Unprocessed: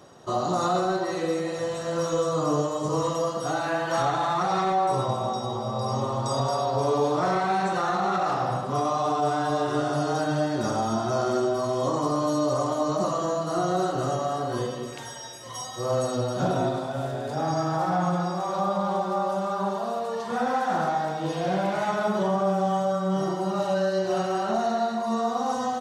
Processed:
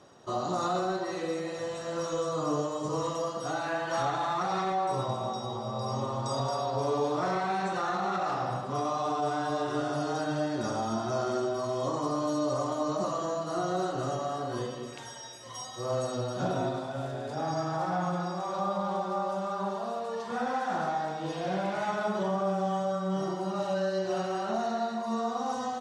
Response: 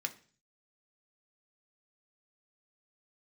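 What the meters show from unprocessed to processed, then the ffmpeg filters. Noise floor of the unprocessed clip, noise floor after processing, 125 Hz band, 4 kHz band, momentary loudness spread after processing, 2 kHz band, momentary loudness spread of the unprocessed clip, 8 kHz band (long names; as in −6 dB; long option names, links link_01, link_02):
−34 dBFS, −39 dBFS, −6.0 dB, −4.5 dB, 5 LU, −4.0 dB, 5 LU, −5.5 dB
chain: -filter_complex "[0:a]lowpass=9300,asplit=2[link_01][link_02];[1:a]atrim=start_sample=2205[link_03];[link_02][link_03]afir=irnorm=-1:irlink=0,volume=-11dB[link_04];[link_01][link_04]amix=inputs=2:normalize=0,volume=-6.5dB"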